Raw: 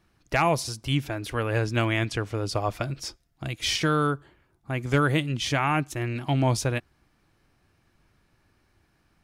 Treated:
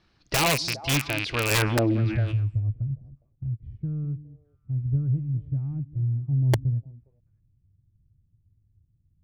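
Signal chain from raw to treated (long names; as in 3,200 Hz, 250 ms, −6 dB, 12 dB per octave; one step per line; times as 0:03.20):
loose part that buzzes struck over −34 dBFS, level −18 dBFS
low-pass filter sweep 4,500 Hz → 110 Hz, 0:01.43–0:02.10
soft clipping −11 dBFS, distortion −27 dB
echo through a band-pass that steps 204 ms, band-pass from 230 Hz, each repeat 1.4 octaves, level −10 dB
wrap-around overflow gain 15.5 dB
0:01.51–0:02.37: envelope flattener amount 50%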